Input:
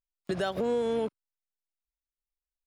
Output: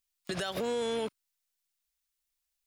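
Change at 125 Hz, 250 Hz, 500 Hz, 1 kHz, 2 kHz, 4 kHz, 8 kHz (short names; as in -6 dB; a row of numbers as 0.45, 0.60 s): -3.5 dB, -5.0 dB, -4.0 dB, -3.0 dB, 0.0 dB, +4.5 dB, n/a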